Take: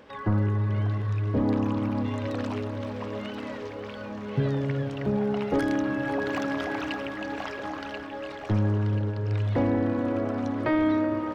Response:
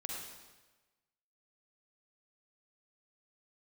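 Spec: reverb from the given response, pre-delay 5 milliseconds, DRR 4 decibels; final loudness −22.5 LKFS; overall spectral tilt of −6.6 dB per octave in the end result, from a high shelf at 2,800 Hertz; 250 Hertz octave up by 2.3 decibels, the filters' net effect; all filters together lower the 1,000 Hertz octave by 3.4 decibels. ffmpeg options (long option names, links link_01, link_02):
-filter_complex "[0:a]equalizer=frequency=250:width_type=o:gain=3,equalizer=frequency=1000:width_type=o:gain=-5,highshelf=frequency=2800:gain=4,asplit=2[link_01][link_02];[1:a]atrim=start_sample=2205,adelay=5[link_03];[link_02][link_03]afir=irnorm=-1:irlink=0,volume=-4dB[link_04];[link_01][link_04]amix=inputs=2:normalize=0,volume=3dB"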